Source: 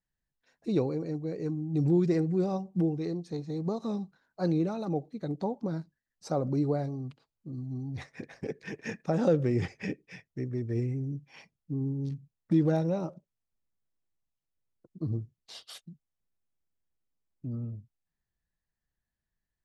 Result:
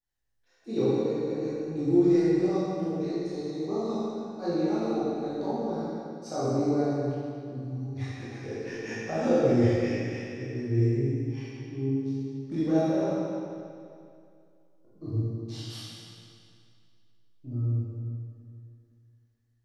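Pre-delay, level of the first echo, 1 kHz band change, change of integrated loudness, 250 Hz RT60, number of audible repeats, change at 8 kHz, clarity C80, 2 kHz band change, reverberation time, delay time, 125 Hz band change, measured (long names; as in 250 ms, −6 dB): 17 ms, no echo audible, +4.5 dB, +2.5 dB, 2.4 s, no echo audible, can't be measured, −2.5 dB, +4.0 dB, 2.4 s, no echo audible, +1.5 dB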